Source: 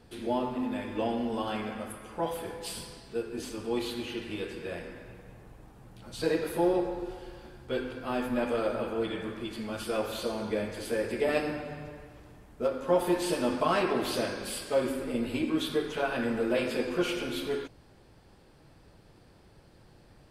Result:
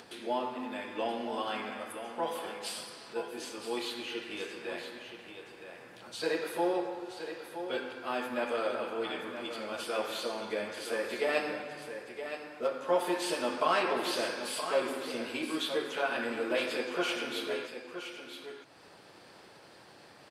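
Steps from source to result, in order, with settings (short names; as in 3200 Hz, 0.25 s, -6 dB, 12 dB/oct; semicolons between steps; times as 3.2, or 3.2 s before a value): echo 0.97 s -9.5 dB; upward compressor, threshold -39 dBFS; weighting filter A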